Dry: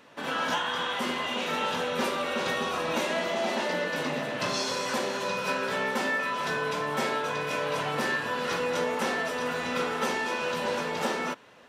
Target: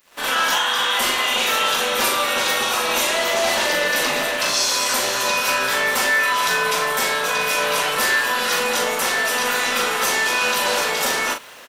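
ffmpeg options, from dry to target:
ffmpeg -i in.wav -filter_complex "[0:a]highpass=frequency=820:poles=1,aemphasis=mode=production:type=50fm,asplit=2[link_01][link_02];[link_02]alimiter=level_in=2dB:limit=-24dB:level=0:latency=1,volume=-2dB,volume=2dB[link_03];[link_01][link_03]amix=inputs=2:normalize=0,dynaudnorm=framelen=120:gausssize=3:maxgain=14dB,acrusher=bits=6:mix=0:aa=0.5,tremolo=f=270:d=0.571,asplit=2[link_04][link_05];[link_05]adelay=39,volume=-6.5dB[link_06];[link_04][link_06]amix=inputs=2:normalize=0,volume=-4.5dB" out.wav

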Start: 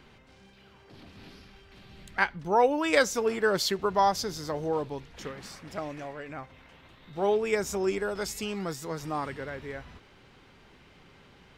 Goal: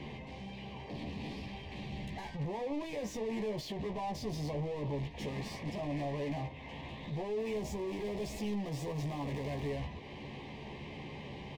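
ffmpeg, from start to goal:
ffmpeg -i in.wav -filter_complex "[0:a]bandreject=frequency=311.5:width_type=h:width=4,bandreject=frequency=623:width_type=h:width=4,bandreject=frequency=934.5:width_type=h:width=4,bandreject=frequency=1246:width_type=h:width=4,bandreject=frequency=1557.5:width_type=h:width=4,bandreject=frequency=1869:width_type=h:width=4,agate=range=-14dB:threshold=-43dB:ratio=16:detection=peak,bass=frequency=250:gain=14,treble=frequency=4000:gain=-4,acompressor=threshold=-49dB:ratio=2,alimiter=level_in=13.5dB:limit=-24dB:level=0:latency=1:release=16,volume=-13.5dB,acrossover=split=440[link_01][link_02];[link_02]acompressor=threshold=-52dB:ratio=6[link_03];[link_01][link_03]amix=inputs=2:normalize=0,asettb=1/sr,asplit=3[link_04][link_05][link_06];[link_04]atrim=end=7.394[link_07];[link_05]atrim=start=7.39:end=9.7,asetpts=PTS-STARTPTS,afade=type=in:duration=0.004:curve=qsin,afade=type=out:start_time=2.306:duration=0.004:curve=qsin,aeval=exprs='val(0)*gte(abs(val(0)),0.00237)':channel_layout=same[link_08];[link_06]atrim=start=9.696[link_09];[link_07][link_08]acrossfade=duration=0.004:curve1=hsin:curve2=qsin[link_10];[link_10][link_09]acrossfade=duration=0.004:curve1=qsin:curve2=hsin,asplit=2[link_11][link_12];[link_12]highpass=frequency=720:poles=1,volume=32dB,asoftclip=type=tanh:threshold=-36dB[link_13];[link_11][link_13]amix=inputs=2:normalize=0,lowpass=frequency=1700:poles=1,volume=-6dB,asuperstop=centerf=1400:order=4:qfactor=1.6,asplit=2[link_14][link_15];[link_15]adelay=14,volume=-5dB[link_16];[link_14][link_16]amix=inputs=2:normalize=0,volume=4dB" out.wav

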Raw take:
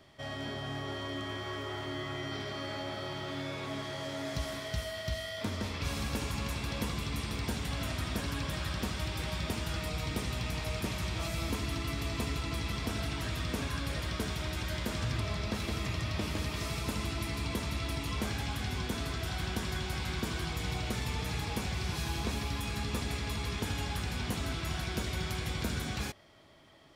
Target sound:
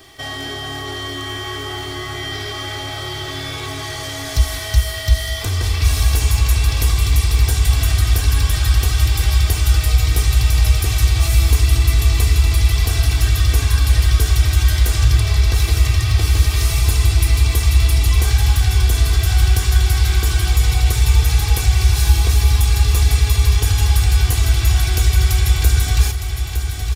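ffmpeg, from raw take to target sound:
ffmpeg -i in.wav -filter_complex "[0:a]aecho=1:1:2.6:0.74,aecho=1:1:911|1822|2733|3644|4555|5466|6377:0.266|0.157|0.0926|0.0546|0.0322|0.019|0.0112,asplit=2[link_01][link_02];[link_02]acompressor=threshold=-41dB:ratio=6,volume=1dB[link_03];[link_01][link_03]amix=inputs=2:normalize=0,asubboost=boost=10:cutoff=74,crystalizer=i=2.5:c=0,volume=4.5dB" out.wav

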